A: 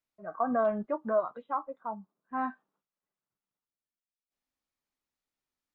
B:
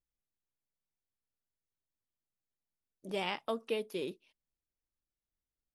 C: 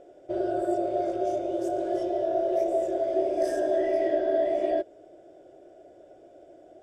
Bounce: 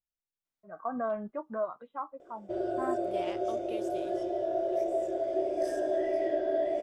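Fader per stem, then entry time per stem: -5.0, -9.0, -4.5 dB; 0.45, 0.00, 2.20 s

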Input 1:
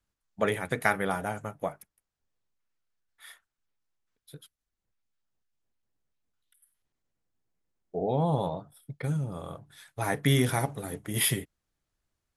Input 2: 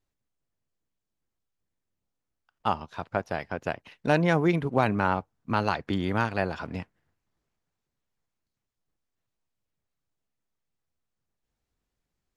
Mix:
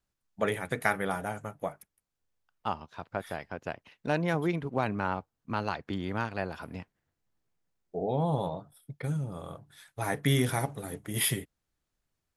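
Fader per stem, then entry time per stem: -2.0, -6.0 dB; 0.00, 0.00 s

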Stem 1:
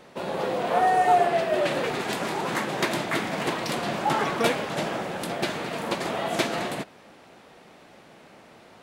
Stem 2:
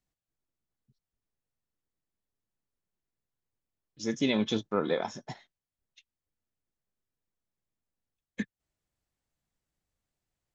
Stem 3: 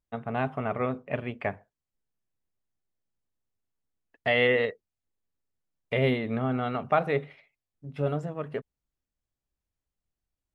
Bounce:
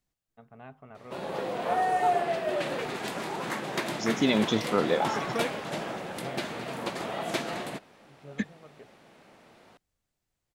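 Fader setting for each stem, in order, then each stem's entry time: -5.5, +3.0, -18.5 dB; 0.95, 0.00, 0.25 s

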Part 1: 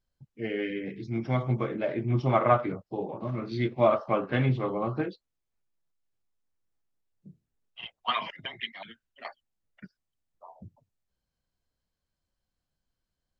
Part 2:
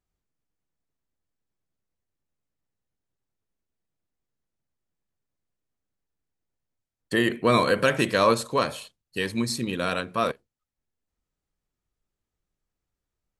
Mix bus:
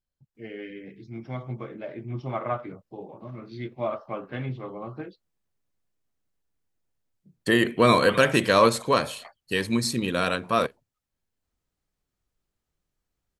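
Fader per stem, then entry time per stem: -7.0, +2.0 dB; 0.00, 0.35 s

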